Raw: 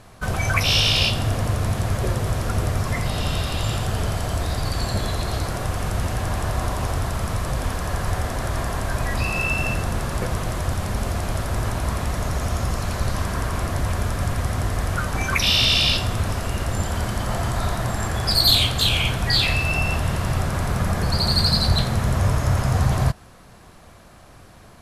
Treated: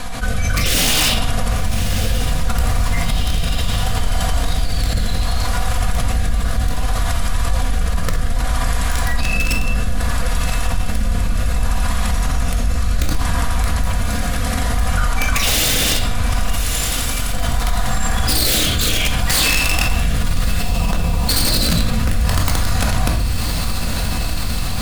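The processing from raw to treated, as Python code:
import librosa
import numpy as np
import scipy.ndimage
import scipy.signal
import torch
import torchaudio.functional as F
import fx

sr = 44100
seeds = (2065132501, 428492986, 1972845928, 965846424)

y = fx.highpass(x, sr, hz=190.0, slope=6, at=(13.94, 14.69))
y = fx.differentiator(y, sr, at=(16.53, 17.33))
y = fx.cheby2_lowpass(y, sr, hz=2100.0, order=4, stop_db=40, at=(20.61, 21.29))
y = fx.peak_eq(y, sr, hz=350.0, db=-11.5, octaves=1.6)
y = y + 0.65 * np.pad(y, (int(4.2 * sr / 1000.0), 0))[:len(y)]
y = (np.mod(10.0 ** (12.5 / 20.0) * y + 1.0, 2.0) - 1.0) / 10.0 ** (12.5 / 20.0)
y = fx.rotary(y, sr, hz=0.65)
y = fx.echo_diffused(y, sr, ms=1122, feedback_pct=70, wet_db=-14)
y = fx.room_shoebox(y, sr, seeds[0], volume_m3=620.0, walls='furnished', distance_m=2.0)
y = fx.env_flatten(y, sr, amount_pct=70)
y = y * 10.0 ** (-3.5 / 20.0)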